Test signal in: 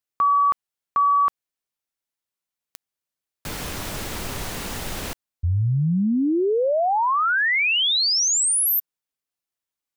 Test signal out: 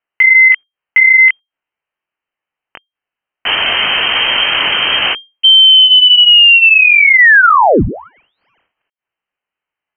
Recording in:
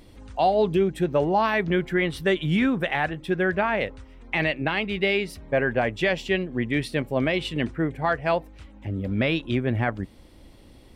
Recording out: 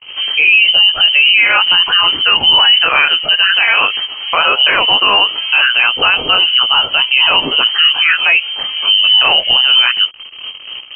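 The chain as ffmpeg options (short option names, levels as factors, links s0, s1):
-filter_complex "[0:a]asplit=2[s0][s1];[s1]acompressor=mode=upward:threshold=0.0794:ratio=4:attack=0.38:release=125:knee=2.83:detection=peak,volume=0.841[s2];[s0][s2]amix=inputs=2:normalize=0,lowshelf=f=72:g=-6,agate=range=0.00631:threshold=0.02:ratio=16:release=72:detection=rms,flanger=delay=15:depth=8:speed=1.2,lowpass=f=2700:t=q:w=0.5098,lowpass=f=2700:t=q:w=0.6013,lowpass=f=2700:t=q:w=0.9,lowpass=f=2700:t=q:w=2.563,afreqshift=-3200,alimiter=level_in=7.94:limit=0.891:release=50:level=0:latency=1,volume=0.891"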